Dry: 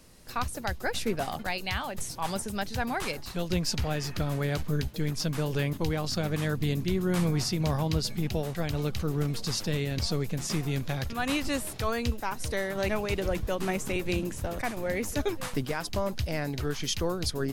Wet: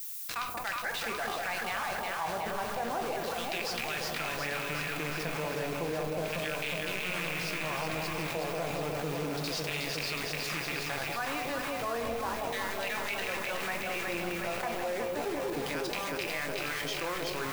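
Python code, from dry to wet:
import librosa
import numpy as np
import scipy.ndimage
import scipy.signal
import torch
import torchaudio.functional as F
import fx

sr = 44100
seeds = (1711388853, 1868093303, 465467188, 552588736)

p1 = fx.rattle_buzz(x, sr, strikes_db=-28.0, level_db=-23.0)
p2 = fx.filter_lfo_bandpass(p1, sr, shape='saw_down', hz=0.32, low_hz=540.0, high_hz=3200.0, q=1.1)
p3 = fx.rider(p2, sr, range_db=10, speed_s=0.5)
p4 = p2 + (p3 * 10.0 ** (-2.5 / 20.0))
p5 = fx.quant_dither(p4, sr, seeds[0], bits=6, dither='none')
p6 = fx.high_shelf(p5, sr, hz=5300.0, db=-4.0)
p7 = fx.dmg_noise_colour(p6, sr, seeds[1], colour='violet', level_db=-52.0)
p8 = p7 + fx.echo_alternate(p7, sr, ms=183, hz=840.0, feedback_pct=81, wet_db=-3.0, dry=0)
p9 = fx.room_shoebox(p8, sr, seeds[2], volume_m3=220.0, walls='furnished', distance_m=0.79)
p10 = fx.env_flatten(p9, sr, amount_pct=70)
y = p10 * 10.0 ** (-8.5 / 20.0)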